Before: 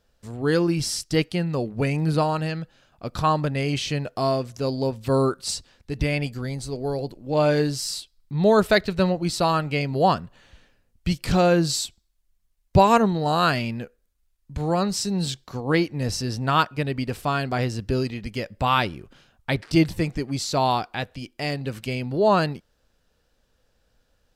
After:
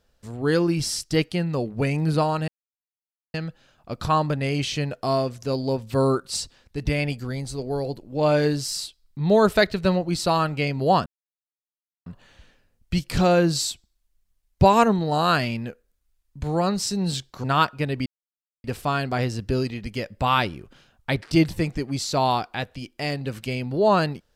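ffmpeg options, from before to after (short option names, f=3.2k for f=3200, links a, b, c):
-filter_complex "[0:a]asplit=5[a][b][c][d][e];[a]atrim=end=2.48,asetpts=PTS-STARTPTS,afade=t=out:st=2.476:d=0.004:c=hsin,apad=pad_dur=0.86[f];[b]atrim=start=2.48:end=10.2,asetpts=PTS-STARTPTS,afade=t=in:d=0.004:c=hsin,afade=t=out:st=7.716:d=0.004:c=hsin,apad=pad_dur=1[g];[c]atrim=start=10.2:end=15.582,asetpts=PTS-STARTPTS,afade=t=in:d=0.004:c=hsin[h];[d]atrim=start=16.418:end=17.04,asetpts=PTS-STARTPTS,afade=t=out:st=0.618:d=0.004:c=hsin,apad=pad_dur=0.58[i];[e]atrim=start=17.04,asetpts=PTS-STARTPTS,afade=t=in:d=0.004:c=hsin[j];[f][g][h]concat=n=3:v=0:a=1[k];[i][j]concat=n=2:v=0:a=1[l];[k][l]acrossfade=d=0.004:c1=hsin:c2=hsin"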